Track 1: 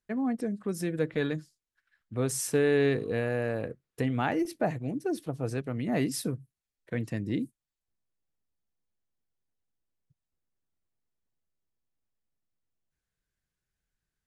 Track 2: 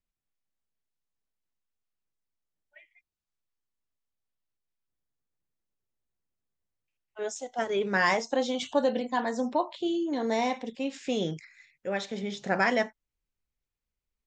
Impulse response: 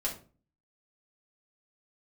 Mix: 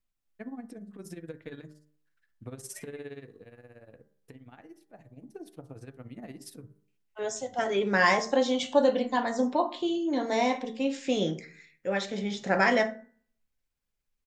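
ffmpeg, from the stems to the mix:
-filter_complex "[0:a]bandreject=f=199.5:t=h:w=4,bandreject=f=399:t=h:w=4,bandreject=f=598.5:t=h:w=4,bandreject=f=798:t=h:w=4,bandreject=f=997.5:t=h:w=4,acompressor=threshold=0.0224:ratio=4,tremolo=f=17:d=0.81,adelay=300,volume=1.5,afade=t=out:st=3.05:d=0.37:silence=0.354813,afade=t=in:st=5.09:d=0.28:silence=0.446684,asplit=2[s0][s1];[s1]volume=0.0841[s2];[1:a]volume=0.944,asplit=3[s3][s4][s5];[s4]volume=0.335[s6];[s5]apad=whole_len=642131[s7];[s0][s7]sidechaincompress=threshold=0.00398:ratio=8:attack=16:release=390[s8];[2:a]atrim=start_sample=2205[s9];[s2][s6]amix=inputs=2:normalize=0[s10];[s10][s9]afir=irnorm=-1:irlink=0[s11];[s8][s3][s11]amix=inputs=3:normalize=0,bandreject=f=75.55:t=h:w=4,bandreject=f=151.1:t=h:w=4,bandreject=f=226.65:t=h:w=4,bandreject=f=302.2:t=h:w=4,bandreject=f=377.75:t=h:w=4,bandreject=f=453.3:t=h:w=4,bandreject=f=528.85:t=h:w=4,bandreject=f=604.4:t=h:w=4,bandreject=f=679.95:t=h:w=4,bandreject=f=755.5:t=h:w=4,bandreject=f=831.05:t=h:w=4,bandreject=f=906.6:t=h:w=4,bandreject=f=982.15:t=h:w=4,bandreject=f=1057.7:t=h:w=4,bandreject=f=1133.25:t=h:w=4,bandreject=f=1208.8:t=h:w=4,bandreject=f=1284.35:t=h:w=4,bandreject=f=1359.9:t=h:w=4,bandreject=f=1435.45:t=h:w=4,bandreject=f=1511:t=h:w=4,bandreject=f=1586.55:t=h:w=4,bandreject=f=1662.1:t=h:w=4,bandreject=f=1737.65:t=h:w=4,bandreject=f=1813.2:t=h:w=4,bandreject=f=1888.75:t=h:w=4,bandreject=f=1964.3:t=h:w=4"

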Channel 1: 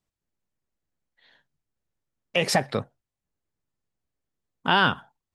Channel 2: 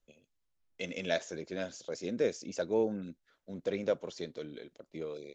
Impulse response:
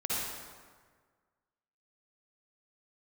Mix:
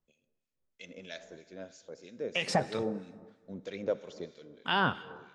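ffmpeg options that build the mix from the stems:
-filter_complex "[0:a]volume=0.562,asplit=2[s0][s1];[s1]volume=0.0891[s2];[1:a]volume=0.944,afade=t=in:st=2.51:d=0.2:silence=0.446684,afade=t=out:st=4.18:d=0.29:silence=0.354813,asplit=2[s3][s4];[s4]volume=0.119[s5];[2:a]atrim=start_sample=2205[s6];[s2][s5]amix=inputs=2:normalize=0[s7];[s7][s6]afir=irnorm=-1:irlink=0[s8];[s0][s3][s8]amix=inputs=3:normalize=0,lowpass=f=8800:w=0.5412,lowpass=f=8800:w=1.3066,acrossover=split=1500[s9][s10];[s9]aeval=exprs='val(0)*(1-0.7/2+0.7/2*cos(2*PI*3.1*n/s))':c=same[s11];[s10]aeval=exprs='val(0)*(1-0.7/2-0.7/2*cos(2*PI*3.1*n/s))':c=same[s12];[s11][s12]amix=inputs=2:normalize=0"

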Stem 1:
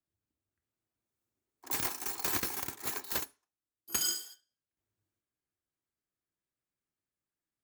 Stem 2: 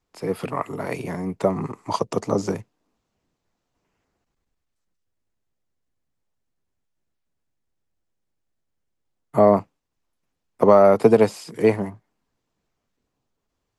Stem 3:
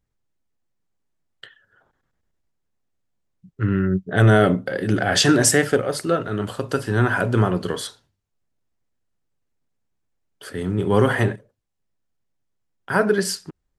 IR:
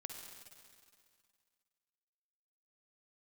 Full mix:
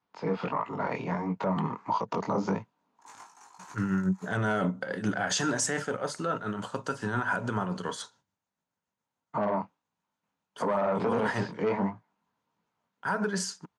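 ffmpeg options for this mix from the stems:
-filter_complex "[0:a]equalizer=f=990:t=o:w=1.9:g=8.5,flanger=delay=18.5:depth=5:speed=0.46,adelay=1350,volume=0.126[s0];[1:a]lowpass=f=4300:w=0.5412,lowpass=f=4300:w=1.3066,flanger=delay=17.5:depth=7.9:speed=1.5,volume=1[s1];[2:a]tremolo=f=7.1:d=0.56,adelay=150,volume=0.501[s2];[s0][s1][s2]amix=inputs=3:normalize=0,asoftclip=type=tanh:threshold=0.251,highpass=140,equalizer=f=190:t=q:w=4:g=5,equalizer=f=360:t=q:w=4:g=-6,equalizer=f=940:t=q:w=4:g=10,equalizer=f=1400:t=q:w=4:g=5,equalizer=f=6500:t=q:w=4:g=9,lowpass=f=9300:w=0.5412,lowpass=f=9300:w=1.3066,alimiter=limit=0.112:level=0:latency=1:release=54"

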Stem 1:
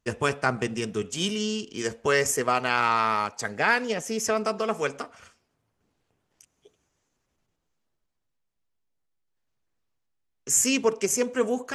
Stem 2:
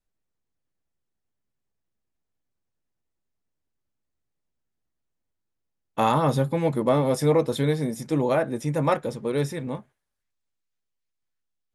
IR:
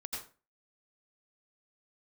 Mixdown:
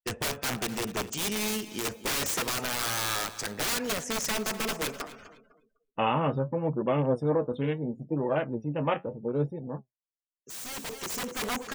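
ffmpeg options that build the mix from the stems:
-filter_complex "[0:a]lowpass=10000,aeval=exprs='(mod(13.3*val(0)+1,2)-1)/13.3':c=same,volume=0.841,asplit=2[s0][s1];[s1]volume=0.178[s2];[1:a]afwtdn=0.02,equalizer=f=2800:t=o:w=0.41:g=12,flanger=delay=4.9:depth=7.4:regen=66:speed=0.73:shape=triangular,volume=0.891,asplit=2[s3][s4];[s4]apad=whole_len=518142[s5];[s0][s5]sidechaincompress=threshold=0.00631:ratio=8:attack=12:release=1490[s6];[s2]aecho=0:1:251|502|753|1004|1255|1506:1|0.45|0.202|0.0911|0.041|0.0185[s7];[s6][s3][s7]amix=inputs=3:normalize=0,afftdn=nr=35:nf=-53"

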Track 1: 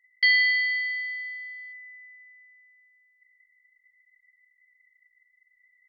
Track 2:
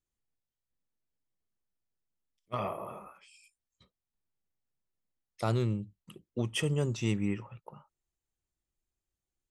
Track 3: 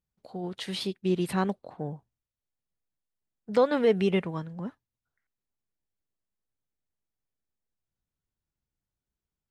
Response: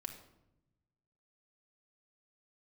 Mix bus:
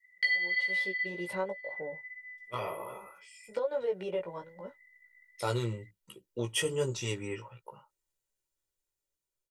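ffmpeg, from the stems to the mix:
-filter_complex "[0:a]acontrast=42,volume=0.794[s0];[1:a]highshelf=f=4900:g=7.5,dynaudnorm=f=670:g=5:m=2,volume=0.668[s1];[2:a]equalizer=f=570:t=o:w=0.24:g=12,volume=0.447,asplit=2[s2][s3];[s3]apad=whole_len=259678[s4];[s0][s4]sidechaincompress=threshold=0.00631:ratio=8:attack=38:release=236[s5];[s5][s2]amix=inputs=2:normalize=0,adynamicequalizer=threshold=0.01:dfrequency=770:dqfactor=0.85:tfrequency=770:tqfactor=0.85:attack=5:release=100:ratio=0.375:range=3.5:mode=boostabove:tftype=bell,acompressor=threshold=0.0398:ratio=5,volume=1[s6];[s1][s6]amix=inputs=2:normalize=0,equalizer=f=62:w=0.66:g=-13,aecho=1:1:2.1:0.51,flanger=delay=15.5:depth=2.1:speed=1.3"

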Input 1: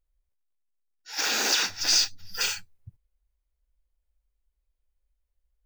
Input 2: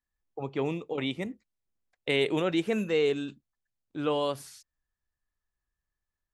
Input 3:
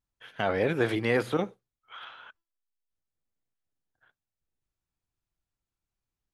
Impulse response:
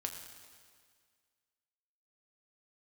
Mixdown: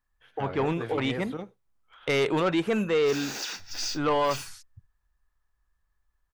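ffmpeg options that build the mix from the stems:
-filter_complex "[0:a]adelay=1900,volume=0.299[s0];[1:a]equalizer=f=1100:w=0.93:g=10.5,volume=1.19[s1];[2:a]volume=0.316[s2];[s0][s1][s2]amix=inputs=3:normalize=0,lowshelf=f=100:g=11,asoftclip=type=tanh:threshold=0.126"

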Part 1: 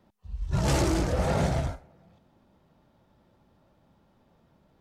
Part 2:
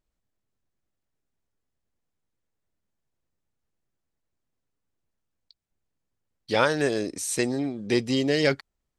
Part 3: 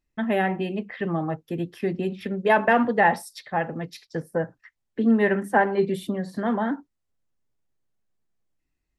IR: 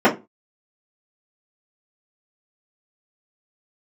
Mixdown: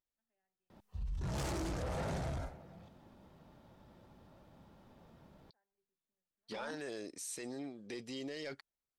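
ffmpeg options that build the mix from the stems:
-filter_complex "[0:a]adelay=700,volume=1.41[s0];[1:a]lowshelf=f=200:g=-11,volume=0.251,asplit=2[s1][s2];[2:a]highpass=f=450:p=1,volume=0.251[s3];[s2]apad=whole_len=396373[s4];[s3][s4]sidechaingate=range=0.00251:threshold=0.00501:ratio=16:detection=peak[s5];[s0][s1][s5]amix=inputs=3:normalize=0,asoftclip=type=tanh:threshold=0.0631,alimiter=level_in=3.35:limit=0.0631:level=0:latency=1:release=17,volume=0.299"

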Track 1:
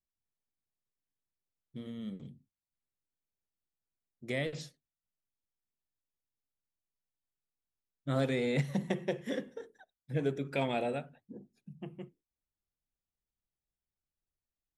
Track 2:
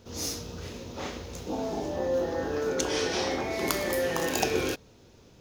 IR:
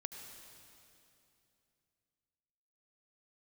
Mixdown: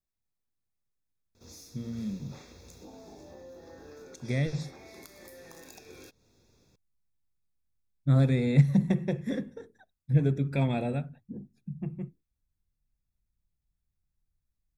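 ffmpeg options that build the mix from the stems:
-filter_complex "[0:a]asubboost=boost=3.5:cutoff=200,volume=0.891[s0];[1:a]highshelf=f=2300:g=10,acompressor=threshold=0.02:ratio=5,adelay=1350,volume=0.168[s1];[s0][s1]amix=inputs=2:normalize=0,asuperstop=centerf=3000:order=12:qfactor=5.9,lowshelf=f=490:g=6"

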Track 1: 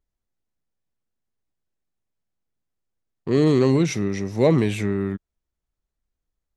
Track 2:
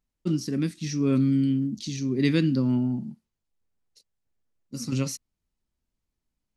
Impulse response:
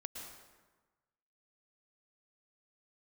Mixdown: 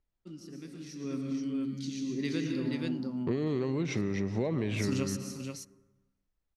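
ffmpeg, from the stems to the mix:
-filter_complex "[0:a]lowpass=4300,acompressor=threshold=0.112:ratio=6,volume=0.668,asplit=3[s0][s1][s2];[s1]volume=0.398[s3];[1:a]lowshelf=f=140:g=-11,dynaudnorm=f=260:g=9:m=3.16,volume=0.631,asplit=3[s4][s5][s6];[s5]volume=0.316[s7];[s6]volume=0.158[s8];[s2]apad=whole_len=289300[s9];[s4][s9]sidechaingate=range=0.0224:threshold=0.0447:ratio=16:detection=peak[s10];[2:a]atrim=start_sample=2205[s11];[s3][s7]amix=inputs=2:normalize=0[s12];[s12][s11]afir=irnorm=-1:irlink=0[s13];[s8]aecho=0:1:478:1[s14];[s0][s10][s13][s14]amix=inputs=4:normalize=0,acompressor=threshold=0.0447:ratio=6"

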